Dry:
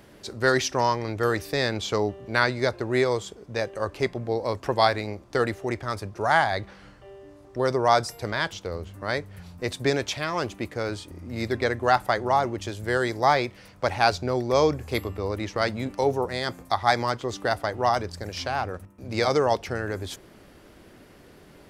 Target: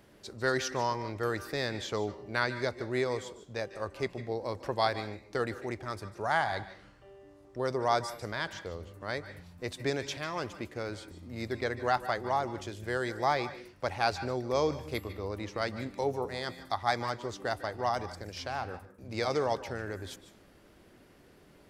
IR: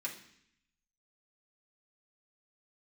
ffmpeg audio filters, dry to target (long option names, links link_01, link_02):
-filter_complex "[0:a]asplit=2[link_01][link_02];[1:a]atrim=start_sample=2205,afade=type=out:start_time=0.19:duration=0.01,atrim=end_sample=8820,adelay=147[link_03];[link_02][link_03]afir=irnorm=-1:irlink=0,volume=-12.5dB[link_04];[link_01][link_04]amix=inputs=2:normalize=0,volume=-8dB"